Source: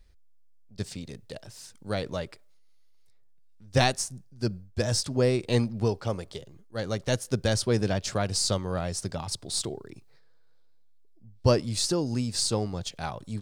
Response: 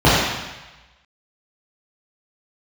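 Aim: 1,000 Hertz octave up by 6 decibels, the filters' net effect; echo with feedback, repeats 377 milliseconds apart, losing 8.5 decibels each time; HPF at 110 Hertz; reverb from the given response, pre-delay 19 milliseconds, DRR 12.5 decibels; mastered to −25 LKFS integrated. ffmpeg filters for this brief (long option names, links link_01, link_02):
-filter_complex "[0:a]highpass=110,equalizer=frequency=1000:width_type=o:gain=8.5,aecho=1:1:377|754|1131|1508:0.376|0.143|0.0543|0.0206,asplit=2[link_01][link_02];[1:a]atrim=start_sample=2205,adelay=19[link_03];[link_02][link_03]afir=irnorm=-1:irlink=0,volume=-40.5dB[link_04];[link_01][link_04]amix=inputs=2:normalize=0,volume=1.5dB"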